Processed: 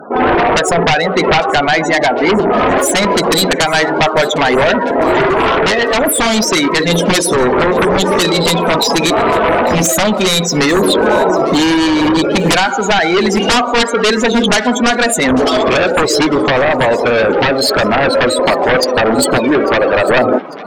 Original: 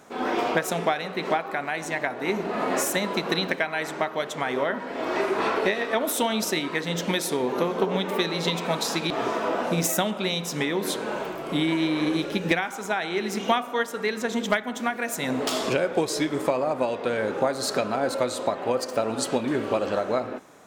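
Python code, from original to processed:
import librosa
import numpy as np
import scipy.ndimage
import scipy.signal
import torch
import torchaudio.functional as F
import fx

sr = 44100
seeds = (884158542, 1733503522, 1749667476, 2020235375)

y = fx.self_delay(x, sr, depth_ms=0.22, at=(1.79, 2.83))
y = fx.bass_treble(y, sr, bass_db=-10, treble_db=9, at=(19.38, 20.09))
y = fx.spec_topn(y, sr, count=32)
y = fx.highpass(y, sr, hz=180.0, slope=6)
y = fx.high_shelf(y, sr, hz=8200.0, db=4.5)
y = fx.fold_sine(y, sr, drive_db=16, ceiling_db=-8.5)
y = fx.rider(y, sr, range_db=10, speed_s=0.5)
y = fx.echo_wet_highpass(y, sr, ms=848, feedback_pct=47, hz=1500.0, wet_db=-18.5)
y = fx.env_flatten(y, sr, amount_pct=50, at=(10.74, 11.45))
y = y * librosa.db_to_amplitude(1.0)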